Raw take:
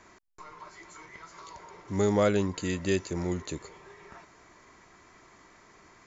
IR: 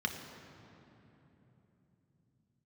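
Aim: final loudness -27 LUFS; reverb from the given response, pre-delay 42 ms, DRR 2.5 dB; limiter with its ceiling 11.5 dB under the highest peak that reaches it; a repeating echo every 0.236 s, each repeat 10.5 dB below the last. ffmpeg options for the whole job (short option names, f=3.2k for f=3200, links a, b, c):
-filter_complex "[0:a]alimiter=limit=-24dB:level=0:latency=1,aecho=1:1:236|472|708:0.299|0.0896|0.0269,asplit=2[a][b];[1:a]atrim=start_sample=2205,adelay=42[c];[b][c]afir=irnorm=-1:irlink=0,volume=-7.5dB[d];[a][d]amix=inputs=2:normalize=0,volume=6.5dB"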